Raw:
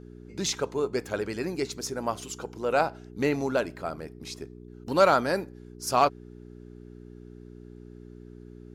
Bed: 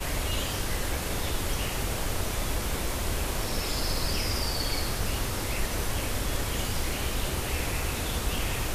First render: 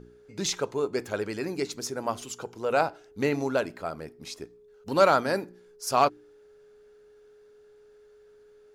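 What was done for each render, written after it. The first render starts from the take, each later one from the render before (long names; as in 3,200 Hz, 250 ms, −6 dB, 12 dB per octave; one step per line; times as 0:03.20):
hum removal 60 Hz, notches 6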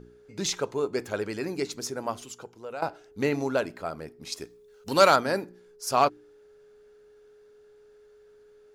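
0:01.90–0:02.82: fade out, to −15.5 dB
0:04.32–0:05.16: high-shelf EQ 2,100 Hz +9.5 dB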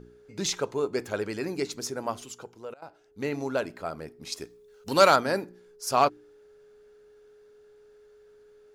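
0:02.74–0:04.21: fade in equal-power, from −22.5 dB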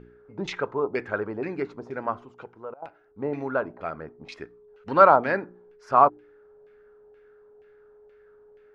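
auto-filter low-pass saw down 2.1 Hz 720–2,500 Hz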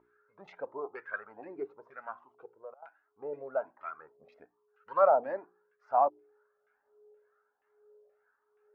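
auto-filter band-pass sine 1.1 Hz 510–1,500 Hz
flanger whose copies keep moving one way rising 1.3 Hz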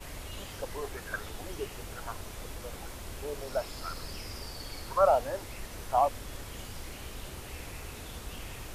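mix in bed −12.5 dB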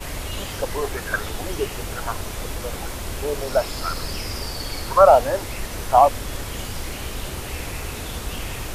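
level +12 dB
brickwall limiter −2 dBFS, peak gain reduction 1.5 dB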